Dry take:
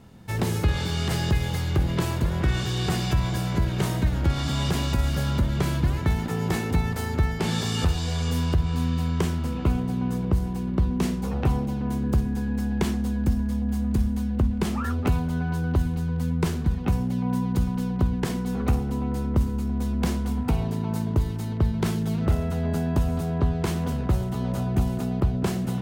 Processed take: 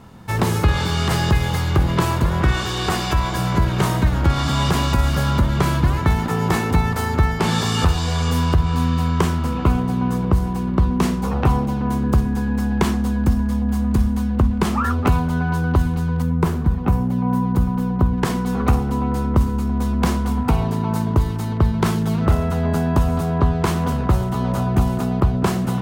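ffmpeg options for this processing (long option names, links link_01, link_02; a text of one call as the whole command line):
ffmpeg -i in.wav -filter_complex "[0:a]asettb=1/sr,asplit=3[link_01][link_02][link_03];[link_01]atrim=end=2.524[link_04];[link_02]atrim=start=2.52:end=3.39,asetpts=PTS-STARTPTS,afade=type=in:duration=0.004:curve=qsin,afade=type=out:start_time=0.866:duration=0.004:curve=qsin,equalizer=frequency=140:width_type=o:width=0.77:gain=-9.5[link_05];[link_03]atrim=start=3.386[link_06];[link_04][link_05]acrossfade=duration=0.004:curve1=hsin:curve2=qsin[link_07];[link_07][link_06]acrossfade=duration=0.004:curve1=qsin:curve2=hsin,asettb=1/sr,asplit=3[link_08][link_09][link_10];[link_08]atrim=end=16.224[link_11];[link_09]atrim=start=16.22:end=18.18,asetpts=PTS-STARTPTS,afade=type=in:duration=0.004:curve=qsin,afade=type=out:start_time=1.956:duration=0.004:curve=qsin,equalizer=frequency=4800:width=0.36:gain=-8.5[link_12];[link_10]atrim=start=18.176[link_13];[link_11][link_12]acrossfade=duration=0.004:curve1=hsin:curve2=qsin[link_14];[link_14][link_13]acrossfade=duration=0.004:curve1=qsin:curve2=hsin,equalizer=frequency=1100:width_type=o:width=0.92:gain=7.5,volume=5.5dB" out.wav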